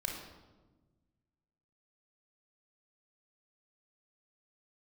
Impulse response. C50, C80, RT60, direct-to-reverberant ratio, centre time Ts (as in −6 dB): 3.5 dB, 6.0 dB, 1.3 s, −1.0 dB, 46 ms